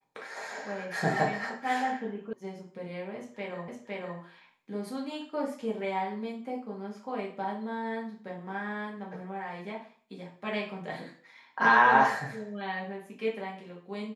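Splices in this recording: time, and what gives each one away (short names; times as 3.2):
2.33 sound cut off
3.68 repeat of the last 0.51 s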